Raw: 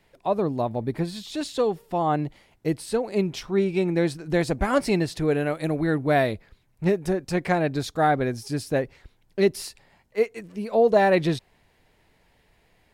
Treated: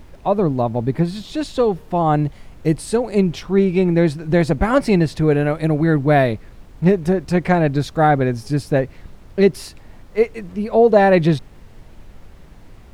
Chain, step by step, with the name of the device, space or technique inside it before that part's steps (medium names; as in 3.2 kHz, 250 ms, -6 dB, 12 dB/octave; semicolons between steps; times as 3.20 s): 2.06–3.20 s: peaking EQ 8.3 kHz +8 dB 1.1 oct; car interior (peaking EQ 150 Hz +4.5 dB 0.93 oct; treble shelf 3.9 kHz -7.5 dB; brown noise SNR 21 dB); trim +6 dB